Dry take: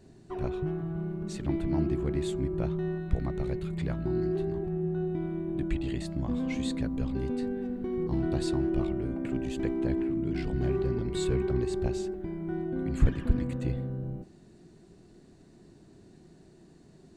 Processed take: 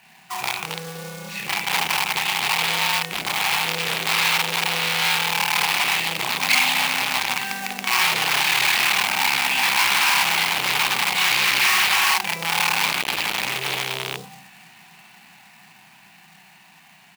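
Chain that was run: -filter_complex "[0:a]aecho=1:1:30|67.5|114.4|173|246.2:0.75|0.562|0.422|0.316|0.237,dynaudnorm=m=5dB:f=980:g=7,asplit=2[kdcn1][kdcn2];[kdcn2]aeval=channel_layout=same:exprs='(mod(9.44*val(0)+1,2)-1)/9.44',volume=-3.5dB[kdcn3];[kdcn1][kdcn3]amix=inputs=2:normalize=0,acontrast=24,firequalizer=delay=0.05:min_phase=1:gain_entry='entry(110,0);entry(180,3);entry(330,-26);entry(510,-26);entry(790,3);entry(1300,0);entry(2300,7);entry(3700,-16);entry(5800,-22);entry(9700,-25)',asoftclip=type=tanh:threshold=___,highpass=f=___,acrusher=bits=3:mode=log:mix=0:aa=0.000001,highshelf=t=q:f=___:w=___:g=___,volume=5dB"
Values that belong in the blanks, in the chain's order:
-18dB, 600, 2.4k, 1.5, 9.5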